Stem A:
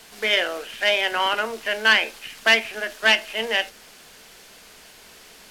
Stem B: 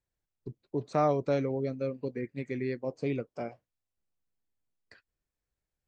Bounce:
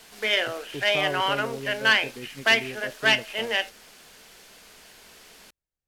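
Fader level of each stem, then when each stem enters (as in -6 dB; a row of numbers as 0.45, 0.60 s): -3.0, -4.5 dB; 0.00, 0.00 s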